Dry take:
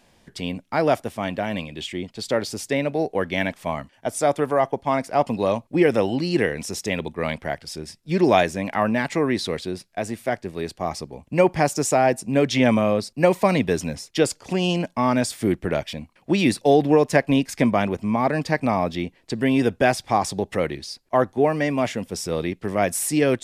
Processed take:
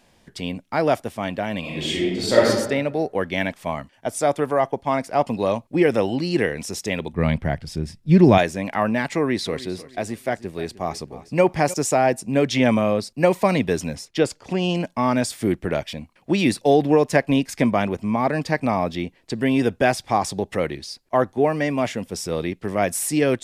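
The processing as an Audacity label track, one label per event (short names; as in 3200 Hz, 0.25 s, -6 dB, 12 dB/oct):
1.600000	2.470000	reverb throw, RT60 1 s, DRR -7.5 dB
7.130000	8.380000	tone controls bass +14 dB, treble -4 dB
9.100000	11.740000	feedback echo 0.308 s, feedback 32%, level -17 dB
14.050000	14.750000	high shelf 5900 Hz -9.5 dB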